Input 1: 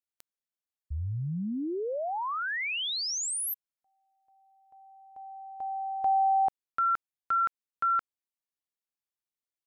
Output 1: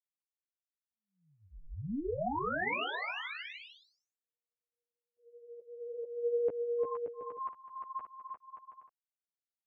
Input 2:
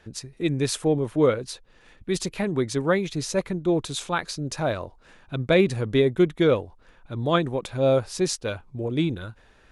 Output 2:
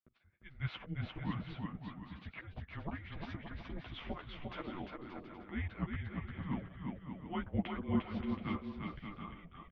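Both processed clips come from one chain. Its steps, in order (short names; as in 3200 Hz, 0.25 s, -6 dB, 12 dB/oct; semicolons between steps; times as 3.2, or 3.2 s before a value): gate -46 dBFS, range -41 dB; auto swell 0.414 s; chorus voices 6, 0.56 Hz, delay 12 ms, depth 4.5 ms; mistuned SSB -300 Hz 390–3100 Hz; on a send: bouncing-ball echo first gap 0.35 s, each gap 0.65×, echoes 5; on the sum: gain -1 dB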